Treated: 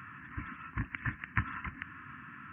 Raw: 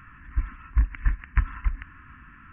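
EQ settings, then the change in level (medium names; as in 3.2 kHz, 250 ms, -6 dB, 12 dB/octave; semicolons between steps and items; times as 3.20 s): dynamic bell 860 Hz, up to -4 dB, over -54 dBFS, Q 1.8; high-pass 110 Hz 24 dB/octave; +2.0 dB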